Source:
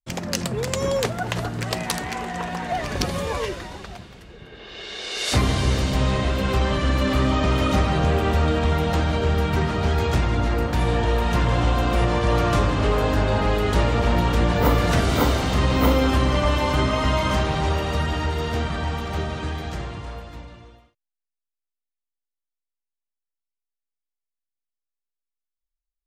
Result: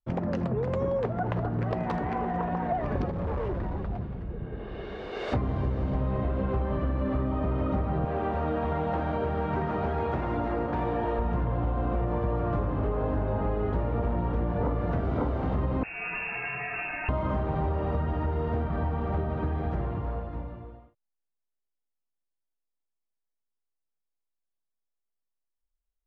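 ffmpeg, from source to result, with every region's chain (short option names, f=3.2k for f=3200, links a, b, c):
-filter_complex "[0:a]asettb=1/sr,asplit=3[a][b][c];[a]atrim=end=3.114[d];[b]atrim=start=3.11:end=5.13,asetpts=PTS-STARTPTS,afade=t=in:d=0.004:c=qsin,afade=t=out:st=2.016:d=0.004:c=qsin,bass=f=250:g=8,treble=f=4k:g=0,volume=30.5dB,asoftclip=hard,volume=-30.5dB[e];[c]atrim=start=5.126[f];[d][e]acrossfade=d=0.004:c1=hsin:c2=qsin[g];[g][f]acrossfade=d=0.004:c1=qsin:c2=hsin,asettb=1/sr,asplit=3[h][i][j];[h]atrim=end=8.054[k];[i]atrim=start=8.05:end=11.19,asetpts=PTS-STARTPTS,afade=t=in:d=0.004:c=qsin,afade=t=out:st=3.136:d=0.004:c=qsin,acrossover=split=4000[l][m];[m]acompressor=threshold=-46dB:ratio=4:attack=1:release=60[n];[l][n]amix=inputs=2:normalize=0,aemphasis=mode=production:type=bsi,asplit=2[o][p];[p]adelay=14,volume=-13dB[q];[o][q]amix=inputs=2:normalize=0,atrim=end_sample=138474[r];[j]atrim=start=11.186[s];[k][r]acrossfade=d=0.004:c1=hsin:c2=qsin[t];[t][s]acrossfade=d=0.004:c1=qsin:c2=hsin,asettb=1/sr,asplit=3[u][v][w];[u]atrim=end=15.834[x];[v]atrim=start=15.83:end=17.09,asetpts=PTS-STARTPTS,afade=t=in:d=0.004:c=qsin,afade=t=out:st=1.256:d=0.004:c=qsin,equalizer=f=190:t=o:w=1.1:g=6,lowpass=f=2.4k:t=q:w=0.5098,lowpass=f=2.4k:t=q:w=0.6013,lowpass=f=2.4k:t=q:w=0.9,lowpass=f=2.4k:t=q:w=2.563,afreqshift=-2800,acrossover=split=200|3000[y][z][aa];[z]acompressor=threshold=-30dB:ratio=2:attack=3.2:release=140:knee=2.83:detection=peak[ab];[y][ab][aa]amix=inputs=3:normalize=0[ac];[w]atrim=start=17.086[ad];[x][ac]acrossfade=d=0.004:c1=hsin:c2=qsin[ae];[ae][ad]acrossfade=d=0.004:c1=qsin:c2=hsin,lowpass=1k,acompressor=threshold=-28dB:ratio=6,volume=3dB"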